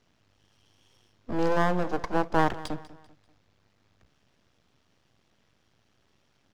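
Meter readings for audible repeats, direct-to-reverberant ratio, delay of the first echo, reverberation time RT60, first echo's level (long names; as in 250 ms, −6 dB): 3, no reverb audible, 195 ms, no reverb audible, −18.0 dB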